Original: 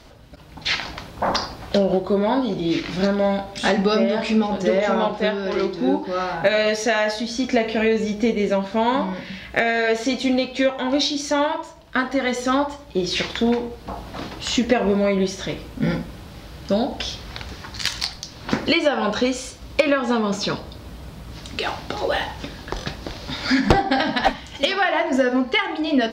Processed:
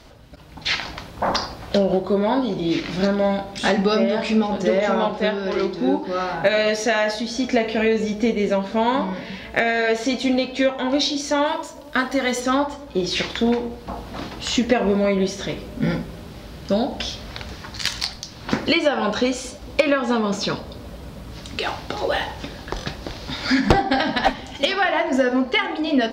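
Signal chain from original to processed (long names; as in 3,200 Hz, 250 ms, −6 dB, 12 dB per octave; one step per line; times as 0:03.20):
0:11.45–0:12.39: high-shelf EQ 4,200 Hz → 7,500 Hz +12 dB
delay with a low-pass on its return 229 ms, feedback 78%, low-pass 850 Hz, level −22 dB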